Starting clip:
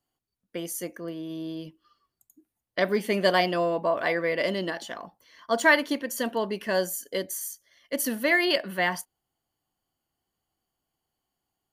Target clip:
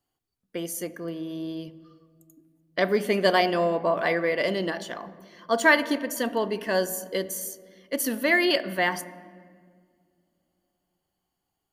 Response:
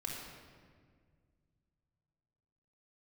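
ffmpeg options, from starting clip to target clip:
-filter_complex "[0:a]asplit=2[link_01][link_02];[1:a]atrim=start_sample=2205,highshelf=frequency=2400:gain=-11[link_03];[link_02][link_03]afir=irnorm=-1:irlink=0,volume=-9.5dB[link_04];[link_01][link_04]amix=inputs=2:normalize=0"

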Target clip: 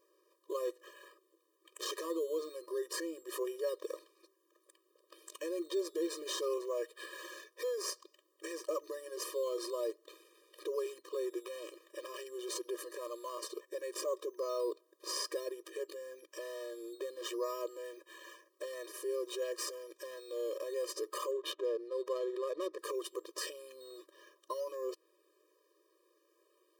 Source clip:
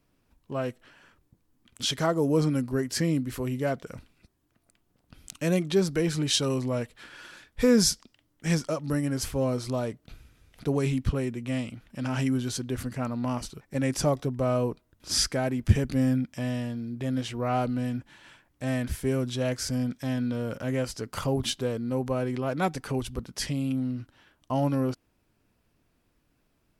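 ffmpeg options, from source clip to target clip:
ffmpeg -i in.wav -filter_complex "[0:a]asplit=2[link_01][link_02];[link_02]acrusher=samples=9:mix=1:aa=0.000001:lfo=1:lforange=5.4:lforate=0.55,volume=-3.5dB[link_03];[link_01][link_03]amix=inputs=2:normalize=0,asettb=1/sr,asplit=3[link_04][link_05][link_06];[link_04]atrim=end=21.314[link_07];[link_05]atrim=start=21.31:end=22.79,asetpts=PTS-STARTPTS,afade=type=in:duration=0.004:curve=qsin,afade=type=out:start_time=1.476:duration=0.004:curve=qsin,adynamicsmooth=sensitivity=4:basefreq=1100[link_08];[link_06]atrim=start=22.786[link_09];[link_07][link_08]acrossfade=duration=0.004:curve1=hsin:curve2=qsin[link_10];[link_10][link_09]acrossfade=duration=0.004:curve1=qsin:curve2=hsin,equalizer=frequency=2200:width_type=o:width=0.64:gain=-9,acompressor=threshold=-29dB:ratio=3,alimiter=level_in=3.5dB:limit=-24dB:level=0:latency=1:release=23,volume=-3.5dB,afftfilt=real='re*eq(mod(floor(b*sr/1024/320),2),1)':imag='im*eq(mod(floor(b*sr/1024/320),2),1)':win_size=1024:overlap=0.75,volume=3dB" out.wav

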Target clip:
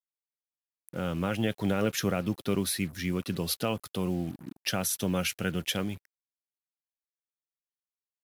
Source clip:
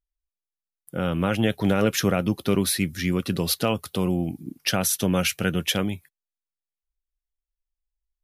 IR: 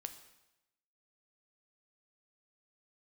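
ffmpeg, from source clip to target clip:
-af "acrusher=bits=6:mix=0:aa=0.5,volume=-6.5dB"

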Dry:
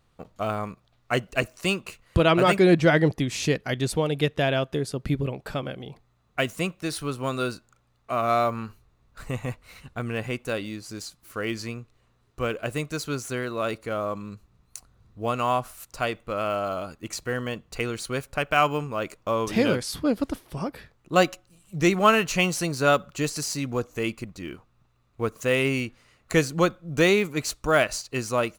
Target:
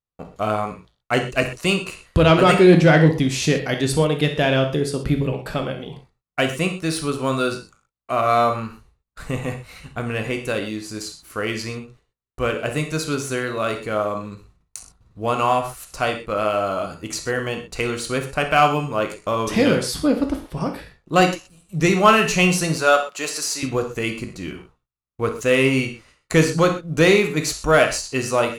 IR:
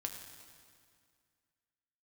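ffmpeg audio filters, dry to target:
-filter_complex "[0:a]asettb=1/sr,asplit=3[link_01][link_02][link_03];[link_01]atrim=end=20.164[link_04];[link_02]atrim=start=20.16:end=20.61,asetpts=PTS-STARTPTS,afade=type=in:duration=0.004:curve=qsin,afade=type=out:start_time=0.446:duration=0.004:curve=qsin,highshelf=frequency=4000:gain=-6[link_05];[link_03]atrim=start=20.606[link_06];[link_04][link_05]acrossfade=duration=0.004:curve1=hsin:curve2=qsin[link_07];[link_07][link_06]acrossfade=duration=0.004:curve1=qsin:curve2=hsin,asettb=1/sr,asplit=3[link_08][link_09][link_10];[link_08]atrim=end=22.764[link_11];[link_09]atrim=start=22.76:end=23.63,asetpts=PTS-STARTPTS,afade=type=in:duration=0.004:curve=qsin,afade=type=out:start_time=0.866:duration=0.004:curve=qsin,highpass=520[link_12];[link_10]atrim=start=23.626[link_13];[link_11][link_12]acrossfade=duration=0.004:curve1=hsin:curve2=qsin[link_14];[link_14][link_13]acrossfade=duration=0.004:curve1=qsin:curve2=hsin,acontrast=84,agate=range=-34dB:threshold=-49dB:ratio=16:detection=peak[link_15];[1:a]atrim=start_sample=2205,atrim=end_sample=3087,asetrate=23814,aresample=44100[link_16];[link_15][link_16]afir=irnorm=-1:irlink=0,volume=-3dB"

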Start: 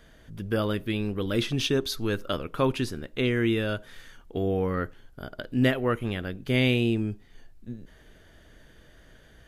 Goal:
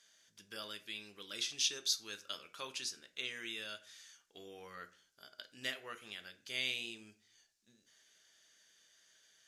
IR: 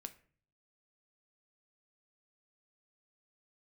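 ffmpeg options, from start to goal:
-filter_complex "[0:a]bandpass=frequency=6100:width_type=q:width=2.1:csg=0[link_01];[1:a]atrim=start_sample=2205,afade=type=out:start_time=0.37:duration=0.01,atrim=end_sample=16758[link_02];[link_01][link_02]afir=irnorm=-1:irlink=0,volume=9dB"

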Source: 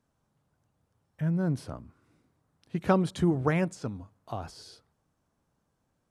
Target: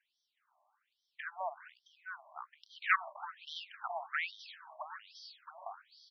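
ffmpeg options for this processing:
ffmpeg -i in.wav -filter_complex "[0:a]aeval=exprs='0.316*sin(PI/2*2.24*val(0)/0.316)':channel_layout=same,acrossover=split=4300[link_01][link_02];[link_02]acompressor=threshold=-50dB:ratio=4:attack=1:release=60[link_03];[link_01][link_03]amix=inputs=2:normalize=0,aecho=1:1:669|1338|2007|2676:0.531|0.191|0.0688|0.0248,afftfilt=real='re*between(b*sr/1024,810*pow(4400/810,0.5+0.5*sin(2*PI*1.2*pts/sr))/1.41,810*pow(4400/810,0.5+0.5*sin(2*PI*1.2*pts/sr))*1.41)':imag='im*between(b*sr/1024,810*pow(4400/810,0.5+0.5*sin(2*PI*1.2*pts/sr))/1.41,810*pow(4400/810,0.5+0.5*sin(2*PI*1.2*pts/sr))*1.41)':win_size=1024:overlap=0.75,volume=-2dB" out.wav

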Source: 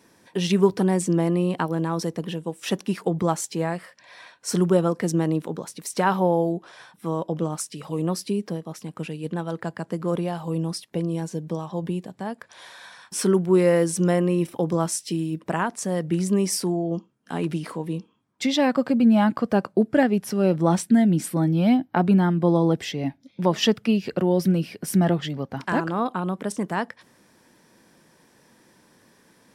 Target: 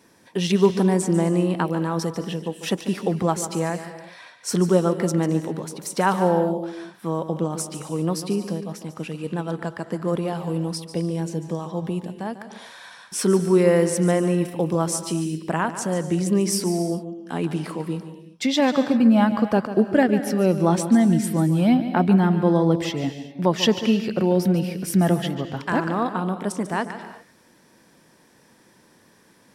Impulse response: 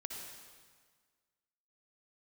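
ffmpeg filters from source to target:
-filter_complex "[0:a]asplit=2[link_01][link_02];[1:a]atrim=start_sample=2205,afade=type=out:start_time=0.31:duration=0.01,atrim=end_sample=14112,adelay=145[link_03];[link_02][link_03]afir=irnorm=-1:irlink=0,volume=-7.5dB[link_04];[link_01][link_04]amix=inputs=2:normalize=0,volume=1dB"

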